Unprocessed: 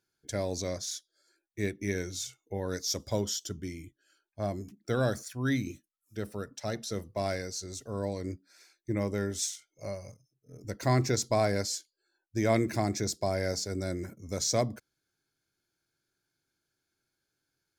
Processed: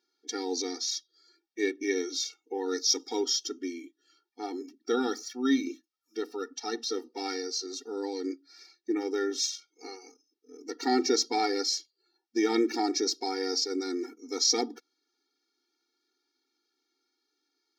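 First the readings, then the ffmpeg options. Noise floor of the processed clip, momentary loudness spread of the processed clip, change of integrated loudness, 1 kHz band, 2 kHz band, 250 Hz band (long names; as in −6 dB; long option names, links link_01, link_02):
−81 dBFS, 14 LU, +2.5 dB, +2.5 dB, +0.5 dB, +3.0 dB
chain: -af "highshelf=frequency=6800:width_type=q:width=3:gain=-9.5,afftfilt=real='re*eq(mod(floor(b*sr/1024/240),2),1)':imag='im*eq(mod(floor(b*sr/1024/240),2),1)':win_size=1024:overlap=0.75,volume=5.5dB"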